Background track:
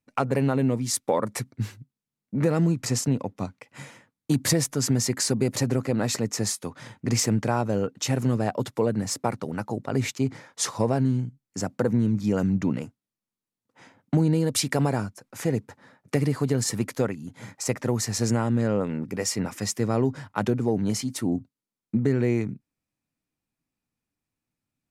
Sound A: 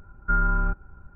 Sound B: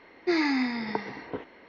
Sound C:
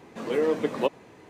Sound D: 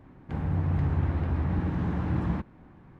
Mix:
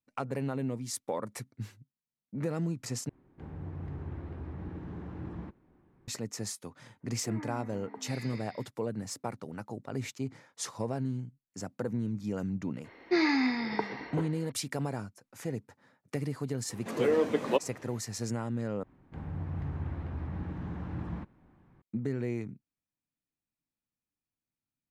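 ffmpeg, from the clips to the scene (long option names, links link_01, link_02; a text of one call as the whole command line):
ffmpeg -i bed.wav -i cue0.wav -i cue1.wav -i cue2.wav -i cue3.wav -filter_complex "[4:a]asplit=2[link_01][link_02];[2:a]asplit=2[link_03][link_04];[0:a]volume=-10.5dB[link_05];[link_01]equalizer=frequency=380:width=1.9:gain=7[link_06];[link_03]acrossover=split=200|1600[link_07][link_08][link_09];[link_07]adelay=450[link_10];[link_09]adelay=770[link_11];[link_10][link_08][link_11]amix=inputs=3:normalize=0[link_12];[link_05]asplit=3[link_13][link_14][link_15];[link_13]atrim=end=3.094[link_16];[link_06]atrim=end=2.99,asetpts=PTS-STARTPTS,volume=-14dB[link_17];[link_14]atrim=start=6.076:end=18.834[link_18];[link_02]atrim=end=2.99,asetpts=PTS-STARTPTS,volume=-9.5dB[link_19];[link_15]atrim=start=21.816[link_20];[link_12]atrim=end=1.68,asetpts=PTS-STARTPTS,volume=-14dB,afade=type=in:duration=0.05,afade=type=out:start_time=1.63:duration=0.05,adelay=6990[link_21];[link_04]atrim=end=1.68,asetpts=PTS-STARTPTS,volume=-1dB,afade=type=in:duration=0.004:curve=hsin,afade=type=out:start_time=1.676:duration=0.004:curve=hsin,adelay=566244S[link_22];[3:a]atrim=end=1.29,asetpts=PTS-STARTPTS,volume=-2dB,afade=type=in:duration=0.004:curve=hsin,afade=type=out:start_time=1.286:duration=0.004:curve=hsin,adelay=16700[link_23];[link_16][link_17]acrossfade=duration=0.004:curve1=hsin:curve2=hsin[link_24];[link_24][link_18]acrossfade=duration=0.004:curve1=hsin:curve2=hsin[link_25];[link_25][link_19]acrossfade=duration=0.004:curve1=hsin:curve2=hsin[link_26];[link_26][link_20]acrossfade=duration=0.004:curve1=hsin:curve2=hsin[link_27];[link_27][link_21][link_22][link_23]amix=inputs=4:normalize=0" out.wav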